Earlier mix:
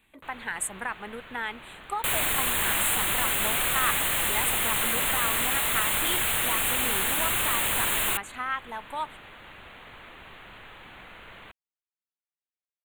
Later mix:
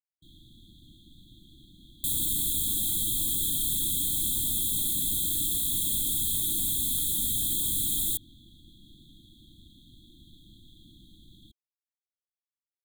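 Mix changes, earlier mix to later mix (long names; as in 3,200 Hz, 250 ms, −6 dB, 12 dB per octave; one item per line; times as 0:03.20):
speech: muted
master: add linear-phase brick-wall band-stop 350–3,200 Hz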